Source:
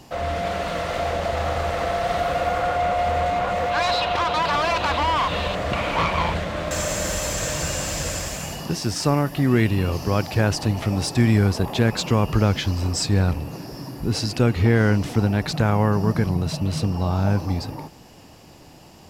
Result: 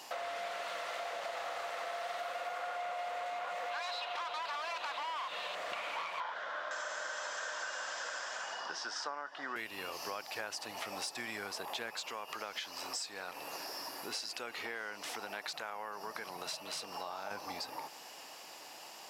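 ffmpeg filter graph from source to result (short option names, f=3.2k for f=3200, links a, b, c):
-filter_complex "[0:a]asettb=1/sr,asplit=3[a][b][c];[a]atrim=end=6.204[d];[b]atrim=start=6.2:end=9.56,asetpts=PTS-STARTPTS,afade=t=in:d=0.004:c=qsin,afade=t=out:st=3.356:d=0.004:c=qsin,highpass=280,equalizer=f=350:t=q:w=4:g=-3,equalizer=f=980:t=q:w=4:g=4,equalizer=f=1.5k:t=q:w=4:g=10,equalizer=f=2.3k:t=q:w=4:g=-8,equalizer=f=4.3k:t=q:w=4:g=-6,lowpass=f=5.5k:w=0.5412,lowpass=f=5.5k:w=1.3066,bandreject=f=2.7k:w=14[e];[c]atrim=start=9.556[f];[d][e]acrossfade=d=0.004:c1=hsin:c2=qsin[g];[g][f]acrossfade=d=0.004:c1=qsin:c2=hsin,asettb=1/sr,asplit=3[h][i][j];[h]atrim=end=11.944[k];[i]atrim=start=11.94:end=17.31,asetpts=PTS-STARTPTS,afade=t=in:d=0.004:c=qsin,afade=t=out:st=5.366:d=0.004:c=qsin,lowshelf=f=160:g=-11,acompressor=threshold=-28dB:ratio=1.5:attack=3.2:release=140:knee=1:detection=peak[l];[j]atrim=start=17.306[m];[k][l]acrossfade=d=0.004:c1=hsin:c2=qsin[n];[n][m]acrossfade=d=0.004:c1=qsin:c2=hsin,highpass=790,acompressor=threshold=-40dB:ratio=6,volume=1.5dB"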